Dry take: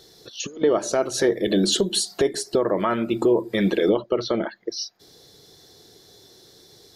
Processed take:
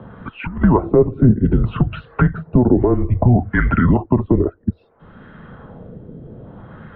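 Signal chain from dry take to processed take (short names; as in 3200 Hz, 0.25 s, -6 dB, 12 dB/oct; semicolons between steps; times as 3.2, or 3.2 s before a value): LFO low-pass sine 0.61 Hz 630–1800 Hz; mistuned SSB -250 Hz 200–2900 Hz; three-band squash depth 40%; gain +5.5 dB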